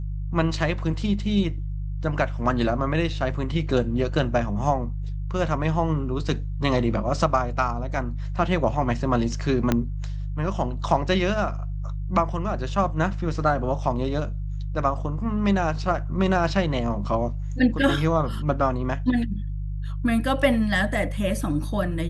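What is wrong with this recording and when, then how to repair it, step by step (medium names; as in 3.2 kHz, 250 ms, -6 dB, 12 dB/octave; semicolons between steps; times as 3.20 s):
hum 50 Hz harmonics 3 -29 dBFS
9.72 s: pop -7 dBFS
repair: de-click; de-hum 50 Hz, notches 3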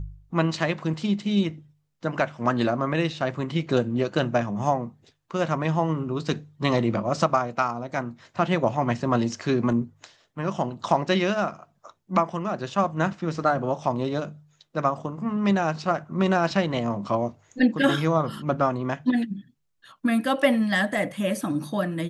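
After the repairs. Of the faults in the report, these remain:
9.72 s: pop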